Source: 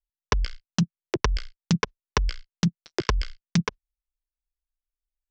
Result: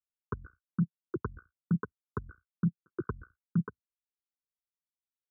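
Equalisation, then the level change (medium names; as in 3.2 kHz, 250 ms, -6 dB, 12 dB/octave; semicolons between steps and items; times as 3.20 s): high-pass 83 Hz 24 dB/octave; Butterworth band-stop 710 Hz, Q 0.76; Chebyshev low-pass 1.5 kHz, order 8; -5.0 dB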